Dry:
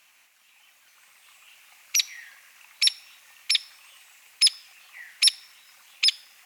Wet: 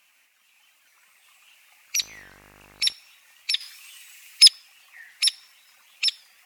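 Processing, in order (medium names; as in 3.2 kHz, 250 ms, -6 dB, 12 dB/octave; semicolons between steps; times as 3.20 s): coarse spectral quantiser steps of 15 dB; 1.99–2.91 s: mains buzz 50 Hz, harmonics 36, -52 dBFS -2 dB/octave; 3.61–4.48 s: tilt shelf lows -10 dB; warped record 45 rpm, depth 100 cents; trim -2 dB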